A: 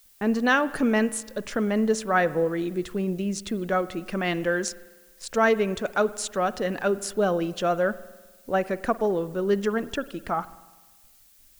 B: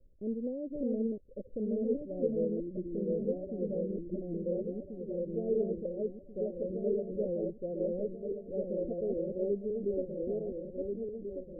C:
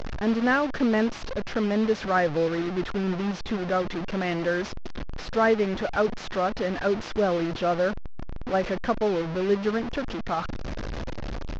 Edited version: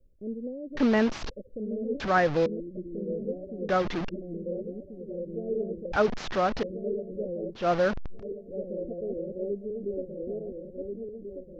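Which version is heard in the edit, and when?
B
0.77–1.30 s: from C
2.00–2.46 s: from C
3.69–4.09 s: from C
5.92–6.63 s: from C
7.61–8.17 s: from C, crossfade 0.16 s
not used: A

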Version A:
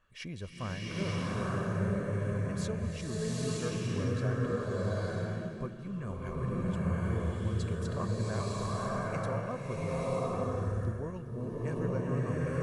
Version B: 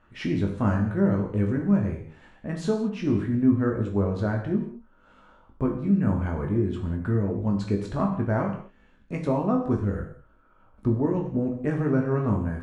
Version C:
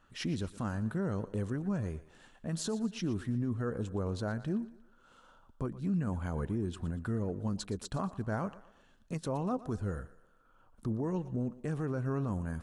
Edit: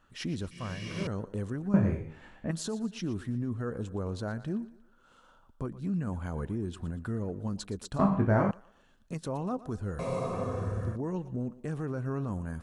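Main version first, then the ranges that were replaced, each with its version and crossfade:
C
0.51–1.07 s: from A
1.74–2.51 s: from B
7.99–8.51 s: from B
9.99–10.96 s: from A

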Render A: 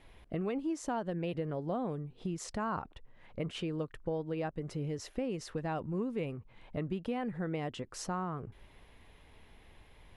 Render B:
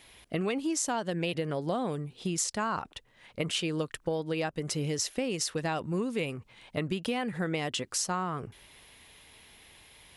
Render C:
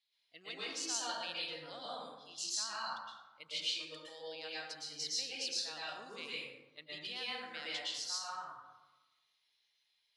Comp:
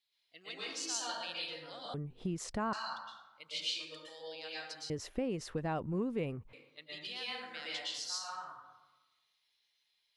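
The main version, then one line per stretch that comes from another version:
C
1.94–2.73 s: from A
4.90–6.53 s: from A
not used: B

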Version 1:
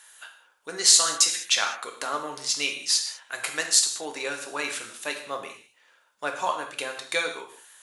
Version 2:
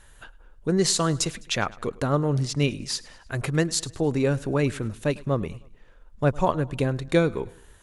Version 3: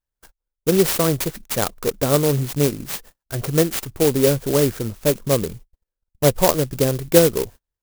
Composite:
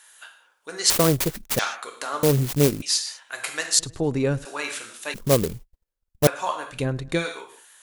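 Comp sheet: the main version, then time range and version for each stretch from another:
1
0.90–1.59 s: from 3
2.23–2.82 s: from 3
3.79–4.45 s: from 2
5.14–6.27 s: from 3
6.78–7.19 s: from 2, crossfade 0.16 s

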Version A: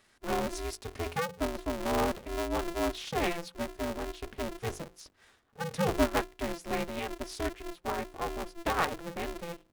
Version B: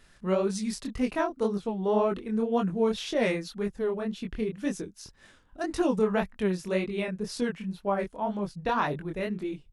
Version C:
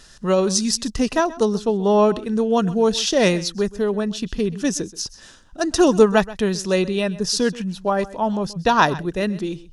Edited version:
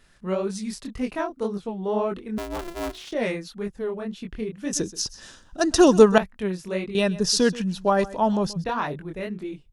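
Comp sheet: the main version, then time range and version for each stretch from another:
B
2.38–3.12 s: from A
4.73–6.18 s: from C
6.95–8.64 s: from C

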